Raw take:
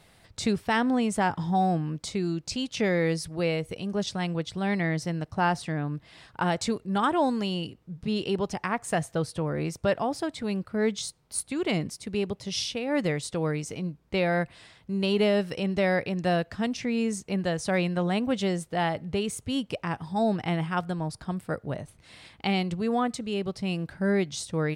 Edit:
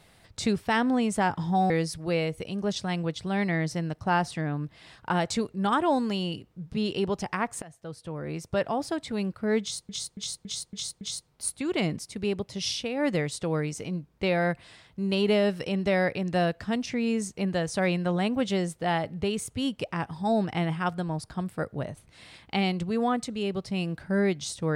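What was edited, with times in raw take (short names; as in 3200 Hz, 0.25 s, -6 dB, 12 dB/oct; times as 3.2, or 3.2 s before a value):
1.7–3.01 cut
8.93–10.14 fade in, from -24 dB
10.92–11.2 loop, 6 plays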